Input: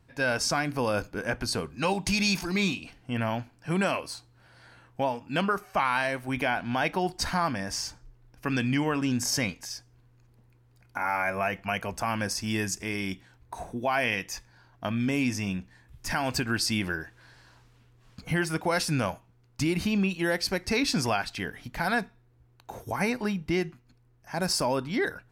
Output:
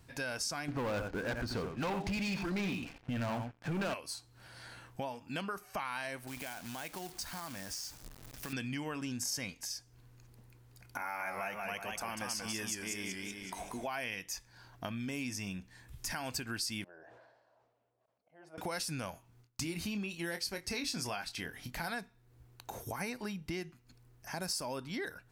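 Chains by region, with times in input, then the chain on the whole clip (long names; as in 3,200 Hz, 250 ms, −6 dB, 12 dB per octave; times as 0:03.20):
0:00.68–0:03.94: low-pass filter 1,900 Hz + single-tap delay 86 ms −10 dB + leveller curve on the samples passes 3
0:06.27–0:08.53: downward compressor 2 to 1, threshold −43 dBFS + log-companded quantiser 4 bits
0:11.01–0:13.87: parametric band 100 Hz −6.5 dB 1.6 octaves + feedback echo with a swinging delay time 188 ms, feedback 45%, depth 127 cents, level −4 dB
0:16.84–0:18.58: volume swells 644 ms + resonant band-pass 630 Hz, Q 5.7 + level that may fall only so fast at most 51 dB per second
0:19.11–0:21.90: noise gate with hold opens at −52 dBFS, closes at −60 dBFS + double-tracking delay 24 ms −9 dB
whole clip: high-shelf EQ 3,700 Hz +9.5 dB; downward compressor 2.5 to 1, threshold −44 dBFS; level +1 dB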